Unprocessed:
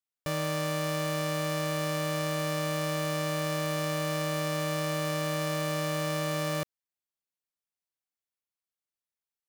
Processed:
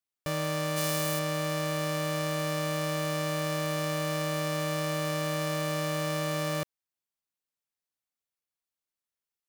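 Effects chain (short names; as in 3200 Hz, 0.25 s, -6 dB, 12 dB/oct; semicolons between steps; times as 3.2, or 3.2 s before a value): 0.76–1.18 high shelf 3600 Hz -> 7300 Hz +10.5 dB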